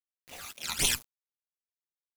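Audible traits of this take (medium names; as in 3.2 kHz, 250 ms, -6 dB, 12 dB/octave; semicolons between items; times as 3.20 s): phasing stages 12, 3.8 Hz, lowest notch 510–1600 Hz; a quantiser's noise floor 8-bit, dither none; random-step tremolo 3.8 Hz, depth 95%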